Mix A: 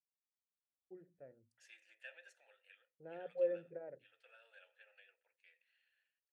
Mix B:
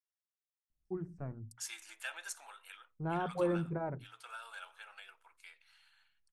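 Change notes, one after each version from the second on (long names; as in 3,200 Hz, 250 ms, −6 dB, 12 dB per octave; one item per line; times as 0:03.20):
master: remove formant filter e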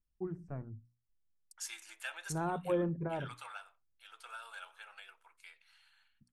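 first voice: entry −0.70 s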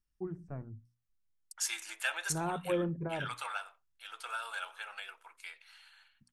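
second voice +8.5 dB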